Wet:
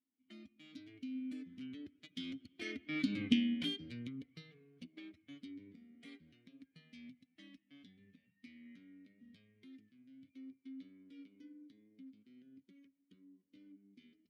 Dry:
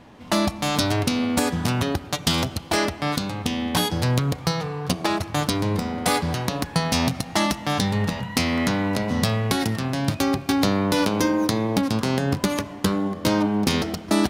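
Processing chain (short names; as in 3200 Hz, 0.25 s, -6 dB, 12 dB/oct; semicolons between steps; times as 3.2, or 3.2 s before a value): per-bin expansion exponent 1.5; Doppler pass-by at 3.22, 15 m/s, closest 1.1 m; vowel filter i; gain +14 dB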